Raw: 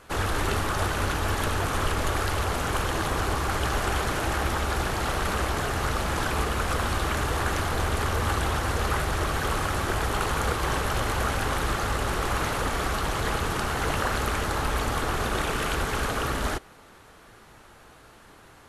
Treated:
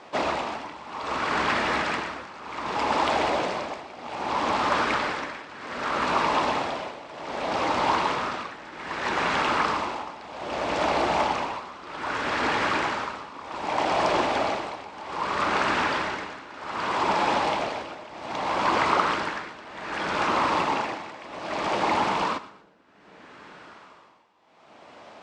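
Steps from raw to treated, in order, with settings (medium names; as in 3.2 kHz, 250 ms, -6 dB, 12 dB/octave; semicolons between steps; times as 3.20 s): high-pass 250 Hz 12 dB/octave; treble shelf 3.5 kHz +7.5 dB; on a send: two-band feedback delay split 980 Hz, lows 324 ms, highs 89 ms, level -14 dB; on the sum: tremolo 0.86 Hz, depth 89%; Chebyshev low-pass 4.5 kHz, order 2; band-stop 4.2 kHz, Q 30; in parallel at -6.5 dB: saturation -24 dBFS, distortion -16 dB; on the sum: speed mistake 45 rpm record played at 33 rpm; short-mantissa float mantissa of 8-bit; sweeping bell 0.28 Hz 630–1700 Hz +7 dB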